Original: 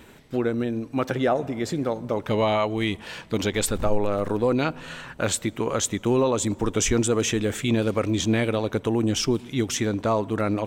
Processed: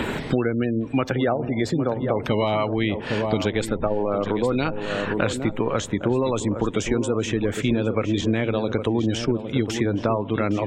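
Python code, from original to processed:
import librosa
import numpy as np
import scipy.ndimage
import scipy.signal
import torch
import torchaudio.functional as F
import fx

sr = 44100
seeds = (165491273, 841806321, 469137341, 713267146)

y = fx.notch(x, sr, hz=6000.0, q=24.0)
y = fx.spec_gate(y, sr, threshold_db=-30, keep='strong')
y = fx.high_shelf(y, sr, hz=7000.0, db=-11.0)
y = fx.echo_filtered(y, sr, ms=809, feedback_pct=39, hz=980.0, wet_db=-9.5)
y = fx.band_squash(y, sr, depth_pct=100)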